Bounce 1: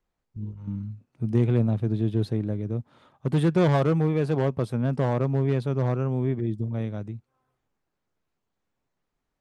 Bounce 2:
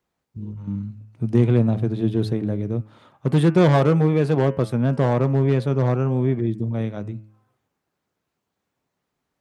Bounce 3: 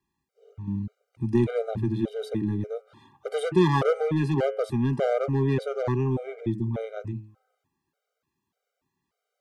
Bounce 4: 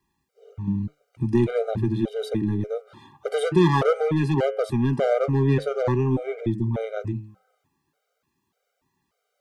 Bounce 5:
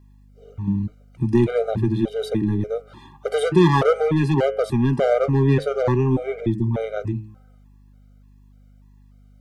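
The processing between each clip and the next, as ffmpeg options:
-af "highpass=85,bandreject=f=107.3:t=h:w=4,bandreject=f=214.6:t=h:w=4,bandreject=f=321.9:t=h:w=4,bandreject=f=429.2:t=h:w=4,bandreject=f=536.5:t=h:w=4,bandreject=f=643.8:t=h:w=4,bandreject=f=751.1:t=h:w=4,bandreject=f=858.4:t=h:w=4,bandreject=f=965.7:t=h:w=4,bandreject=f=1.073k:t=h:w=4,bandreject=f=1.1803k:t=h:w=4,bandreject=f=1.2876k:t=h:w=4,bandreject=f=1.3949k:t=h:w=4,bandreject=f=1.5022k:t=h:w=4,bandreject=f=1.6095k:t=h:w=4,bandreject=f=1.7168k:t=h:w=4,bandreject=f=1.8241k:t=h:w=4,bandreject=f=1.9314k:t=h:w=4,bandreject=f=2.0387k:t=h:w=4,bandreject=f=2.146k:t=h:w=4,bandreject=f=2.2533k:t=h:w=4,bandreject=f=2.3606k:t=h:w=4,bandreject=f=2.4679k:t=h:w=4,bandreject=f=2.5752k:t=h:w=4,bandreject=f=2.6825k:t=h:w=4,bandreject=f=2.7898k:t=h:w=4,bandreject=f=2.8971k:t=h:w=4,bandreject=f=3.0044k:t=h:w=4,volume=5.5dB"
-filter_complex "[0:a]acrossover=split=240|4200[a][b][c];[a]asoftclip=type=tanh:threshold=-25.5dB[d];[d][b][c]amix=inputs=3:normalize=0,afftfilt=real='re*gt(sin(2*PI*1.7*pts/sr)*(1-2*mod(floor(b*sr/1024/400),2)),0)':imag='im*gt(sin(2*PI*1.7*pts/sr)*(1-2*mod(floor(b*sr/1024/400),2)),0)':win_size=1024:overlap=0.75"
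-filter_complex "[0:a]asplit=2[a][b];[b]acompressor=threshold=-31dB:ratio=6,volume=-2dB[c];[a][c]amix=inputs=2:normalize=0,flanger=delay=1:depth=6:regen=80:speed=0.45:shape=sinusoidal,volume=5.5dB"
-af "aeval=exprs='val(0)+0.00251*(sin(2*PI*50*n/s)+sin(2*PI*2*50*n/s)/2+sin(2*PI*3*50*n/s)/3+sin(2*PI*4*50*n/s)/4+sin(2*PI*5*50*n/s)/5)':c=same,volume=3dB"

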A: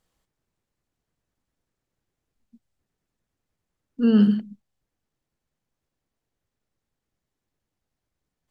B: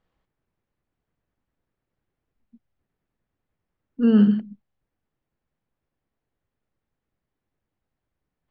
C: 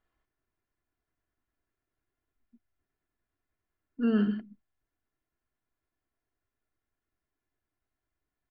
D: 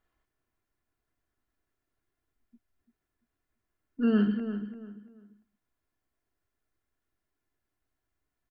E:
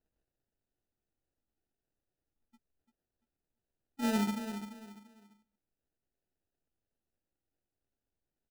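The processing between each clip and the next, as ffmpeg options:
-af "lowpass=2.6k,volume=1dB"
-af "equalizer=f=1.6k:t=o:w=0.93:g=6,aecho=1:1:2.9:0.5,volume=-7.5dB"
-filter_complex "[0:a]asplit=2[a][b];[b]adelay=342,lowpass=f=2.2k:p=1,volume=-9.5dB,asplit=2[c][d];[d]adelay=342,lowpass=f=2.2k:p=1,volume=0.29,asplit=2[e][f];[f]adelay=342,lowpass=f=2.2k:p=1,volume=0.29[g];[a][c][e][g]amix=inputs=4:normalize=0,volume=1.5dB"
-af "acrusher=samples=40:mix=1:aa=0.000001,volume=-6.5dB"

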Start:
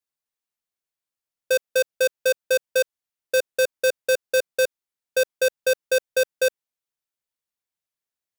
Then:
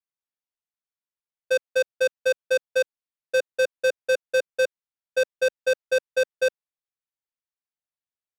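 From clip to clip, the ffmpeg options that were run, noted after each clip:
-af "aemphasis=mode=reproduction:type=50fm,agate=range=-7dB:threshold=-23dB:ratio=16:detection=peak,equalizer=f=290:w=1.4:g=-5"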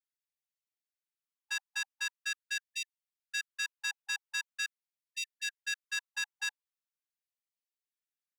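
-af "aecho=1:1:6.7:0.98,afreqshift=120,afftfilt=real='re*gte(b*sr/1024,780*pow(1800/780,0.5+0.5*sin(2*PI*0.43*pts/sr)))':imag='im*gte(b*sr/1024,780*pow(1800/780,0.5+0.5*sin(2*PI*0.43*pts/sr)))':win_size=1024:overlap=0.75,volume=-6dB"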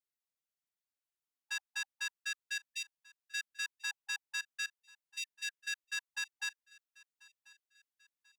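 -af "aecho=1:1:1039|2078|3117:0.0708|0.0311|0.0137,volume=-3dB"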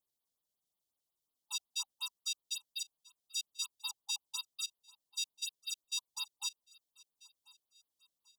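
-af "asuperstop=centerf=1900:order=12:qfactor=1.1,afftfilt=real='re*(1-between(b*sr/1024,960*pow(7400/960,0.5+0.5*sin(2*PI*5.5*pts/sr))/1.41,960*pow(7400/960,0.5+0.5*sin(2*PI*5.5*pts/sr))*1.41))':imag='im*(1-between(b*sr/1024,960*pow(7400/960,0.5+0.5*sin(2*PI*5.5*pts/sr))/1.41,960*pow(7400/960,0.5+0.5*sin(2*PI*5.5*pts/sr))*1.41))':win_size=1024:overlap=0.75,volume=5.5dB"

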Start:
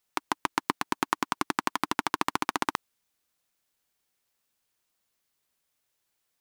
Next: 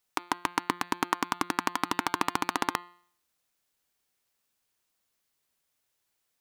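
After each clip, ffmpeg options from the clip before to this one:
-af "bandreject=f=175.6:t=h:w=4,bandreject=f=351.2:t=h:w=4,bandreject=f=526.8:t=h:w=4,bandreject=f=702.4:t=h:w=4,bandreject=f=878:t=h:w=4,bandreject=f=1.0536k:t=h:w=4,bandreject=f=1.2292k:t=h:w=4,bandreject=f=1.4048k:t=h:w=4,bandreject=f=1.5804k:t=h:w=4,bandreject=f=1.756k:t=h:w=4,bandreject=f=1.9316k:t=h:w=4,bandreject=f=2.1072k:t=h:w=4,bandreject=f=2.2828k:t=h:w=4,bandreject=f=2.4584k:t=h:w=4,bandreject=f=2.634k:t=h:w=4,bandreject=f=2.8096k:t=h:w=4,bandreject=f=2.9852k:t=h:w=4,bandreject=f=3.1608k:t=h:w=4,bandreject=f=3.3364k:t=h:w=4,bandreject=f=3.512k:t=h:w=4,bandreject=f=3.6876k:t=h:w=4,bandreject=f=3.8632k:t=h:w=4,bandreject=f=4.0388k:t=h:w=4,bandreject=f=4.2144k:t=h:w=4,bandreject=f=4.39k:t=h:w=4,bandreject=f=4.5656k:t=h:w=4"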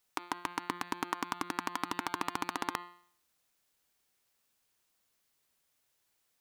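-af "alimiter=limit=-14.5dB:level=0:latency=1:release=65,volume=1.5dB"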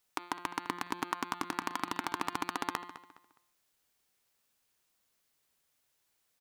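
-filter_complex "[0:a]asplit=2[a][b];[b]adelay=207,lowpass=f=4.8k:p=1,volume=-14dB,asplit=2[c][d];[d]adelay=207,lowpass=f=4.8k:p=1,volume=0.31,asplit=2[e][f];[f]adelay=207,lowpass=f=4.8k:p=1,volume=0.31[g];[a][c][e][g]amix=inputs=4:normalize=0"

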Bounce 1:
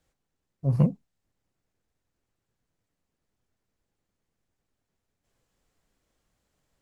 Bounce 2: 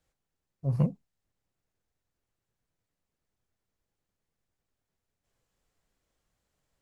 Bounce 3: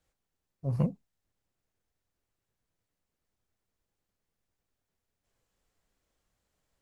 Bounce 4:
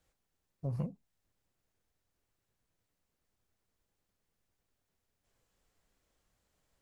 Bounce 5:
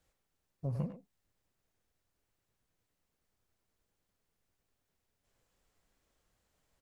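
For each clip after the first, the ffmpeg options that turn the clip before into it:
-af "equalizer=f=260:w=1.4:g=-3,volume=-3.5dB"
-af "equalizer=f=140:w=5.7:g=-4.5"
-af "acompressor=threshold=-36dB:ratio=4,volume=1.5dB"
-filter_complex "[0:a]asplit=2[a][b];[b]adelay=100,highpass=300,lowpass=3.4k,asoftclip=type=hard:threshold=-36dB,volume=-7dB[c];[a][c]amix=inputs=2:normalize=0"

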